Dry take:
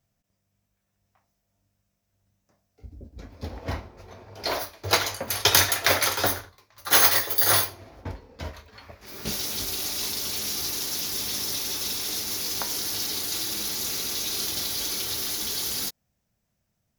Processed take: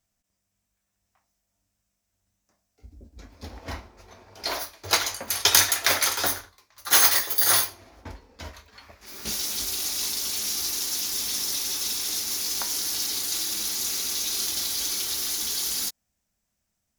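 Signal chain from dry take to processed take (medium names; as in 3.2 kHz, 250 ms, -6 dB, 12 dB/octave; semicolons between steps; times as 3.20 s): graphic EQ 125/500/8000 Hz -11/-5/+6 dB; trim -1 dB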